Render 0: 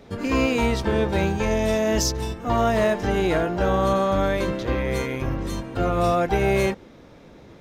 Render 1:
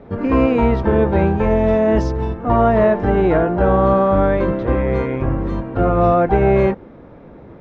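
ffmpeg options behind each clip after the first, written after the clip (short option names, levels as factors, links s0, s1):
-af "lowpass=1400,volume=2.24"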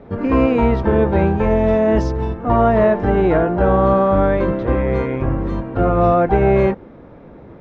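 -af anull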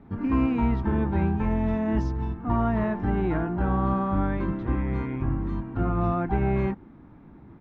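-af "firequalizer=gain_entry='entry(300,0);entry(510,-17);entry(820,-3);entry(4800,-7)':delay=0.05:min_phase=1,volume=0.473"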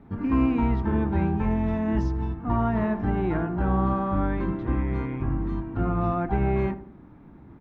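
-filter_complex "[0:a]asplit=2[s0][s1];[s1]adelay=79,lowpass=f=1000:p=1,volume=0.266,asplit=2[s2][s3];[s3]adelay=79,lowpass=f=1000:p=1,volume=0.45,asplit=2[s4][s5];[s5]adelay=79,lowpass=f=1000:p=1,volume=0.45,asplit=2[s6][s7];[s7]adelay=79,lowpass=f=1000:p=1,volume=0.45,asplit=2[s8][s9];[s9]adelay=79,lowpass=f=1000:p=1,volume=0.45[s10];[s0][s2][s4][s6][s8][s10]amix=inputs=6:normalize=0"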